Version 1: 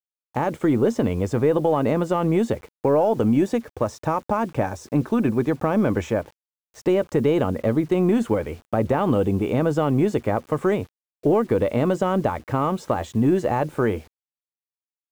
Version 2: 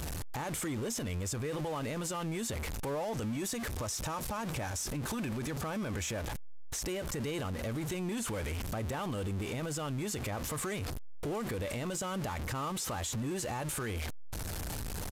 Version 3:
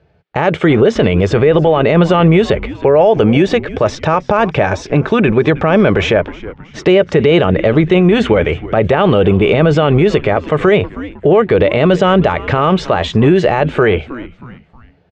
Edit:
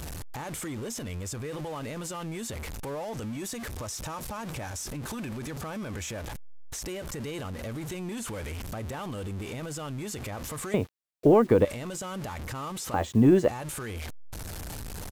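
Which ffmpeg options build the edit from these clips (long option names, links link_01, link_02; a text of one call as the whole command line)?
ffmpeg -i take0.wav -i take1.wav -filter_complex "[0:a]asplit=2[link_01][link_02];[1:a]asplit=3[link_03][link_04][link_05];[link_03]atrim=end=10.742[link_06];[link_01]atrim=start=10.738:end=11.652[link_07];[link_04]atrim=start=11.648:end=12.942[link_08];[link_02]atrim=start=12.938:end=13.482[link_09];[link_05]atrim=start=13.478[link_10];[link_06][link_07]acrossfade=duration=0.004:curve1=hsin:curve2=hsin[link_11];[link_11][link_08]acrossfade=duration=0.004:curve1=hsin:curve2=hsin[link_12];[link_12][link_09]acrossfade=duration=0.004:curve1=hsin:curve2=hsin[link_13];[link_13][link_10]acrossfade=duration=0.004:curve1=hsin:curve2=hsin" out.wav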